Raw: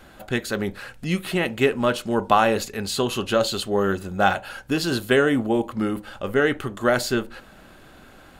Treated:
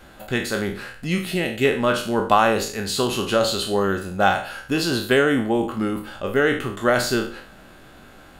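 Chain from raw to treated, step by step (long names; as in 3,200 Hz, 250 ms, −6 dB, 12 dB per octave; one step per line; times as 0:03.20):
peak hold with a decay on every bin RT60 0.47 s
0:01.25–0:01.65: parametric band 1,100 Hz −12 dB 0.99 octaves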